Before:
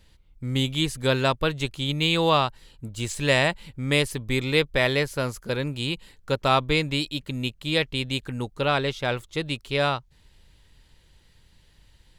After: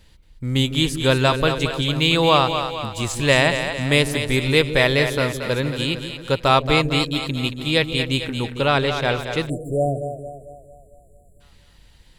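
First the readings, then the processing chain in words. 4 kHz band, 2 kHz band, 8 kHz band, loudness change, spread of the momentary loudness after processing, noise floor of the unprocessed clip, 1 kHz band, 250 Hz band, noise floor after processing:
+5.0 dB, +5.0 dB, +5.5 dB, +5.0 dB, 9 LU, −58 dBFS, +5.0 dB, +5.5 dB, −52 dBFS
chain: echo with a time of its own for lows and highs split 450 Hz, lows 154 ms, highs 226 ms, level −8 dB
time-frequency box erased 0:09.49–0:11.41, 750–7,100 Hz
level +4.5 dB

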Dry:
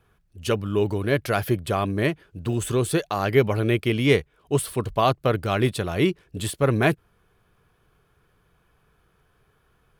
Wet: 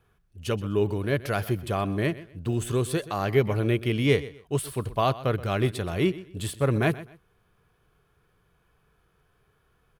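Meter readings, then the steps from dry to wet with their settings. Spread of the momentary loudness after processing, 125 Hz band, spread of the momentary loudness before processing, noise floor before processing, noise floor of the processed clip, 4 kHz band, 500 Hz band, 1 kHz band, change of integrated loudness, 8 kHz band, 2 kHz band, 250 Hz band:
7 LU, −2.0 dB, 7 LU, −65 dBFS, −68 dBFS, −4.0 dB, −3.5 dB, −4.0 dB, −3.0 dB, −5.0 dB, −4.5 dB, −3.0 dB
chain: harmonic and percussive parts rebalanced harmonic +4 dB
repeating echo 126 ms, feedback 26%, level −17 dB
level −5.5 dB

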